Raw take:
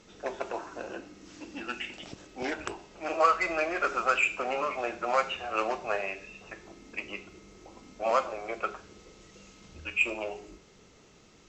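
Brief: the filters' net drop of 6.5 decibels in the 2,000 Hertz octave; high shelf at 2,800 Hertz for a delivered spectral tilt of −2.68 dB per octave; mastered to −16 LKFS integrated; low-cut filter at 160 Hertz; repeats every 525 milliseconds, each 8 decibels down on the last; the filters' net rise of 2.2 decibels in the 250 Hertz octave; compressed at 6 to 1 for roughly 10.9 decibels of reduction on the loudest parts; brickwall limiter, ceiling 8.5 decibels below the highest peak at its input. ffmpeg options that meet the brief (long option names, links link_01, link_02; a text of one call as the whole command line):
ffmpeg -i in.wav -af "highpass=160,equalizer=frequency=250:width_type=o:gain=4,equalizer=frequency=2000:width_type=o:gain=-5,highshelf=frequency=2800:gain=-8,acompressor=threshold=-31dB:ratio=6,alimiter=level_in=3.5dB:limit=-24dB:level=0:latency=1,volume=-3.5dB,aecho=1:1:525|1050|1575|2100|2625:0.398|0.159|0.0637|0.0255|0.0102,volume=23.5dB" out.wav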